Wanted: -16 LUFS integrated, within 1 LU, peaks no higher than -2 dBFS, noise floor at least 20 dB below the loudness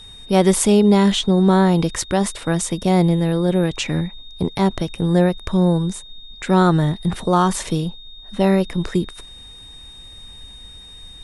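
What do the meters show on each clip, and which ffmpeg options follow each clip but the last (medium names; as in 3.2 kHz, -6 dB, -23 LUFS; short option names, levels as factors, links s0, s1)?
steady tone 3.7 kHz; tone level -39 dBFS; loudness -18.5 LUFS; peak level -1.0 dBFS; loudness target -16.0 LUFS
-> -af "bandreject=f=3700:w=30"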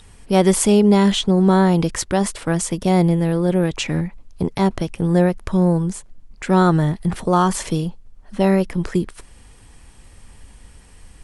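steady tone not found; loudness -18.5 LUFS; peak level -1.0 dBFS; loudness target -16.0 LUFS
-> -af "volume=1.33,alimiter=limit=0.794:level=0:latency=1"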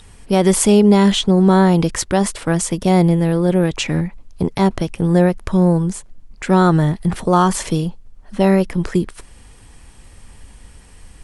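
loudness -16.0 LUFS; peak level -2.0 dBFS; noise floor -44 dBFS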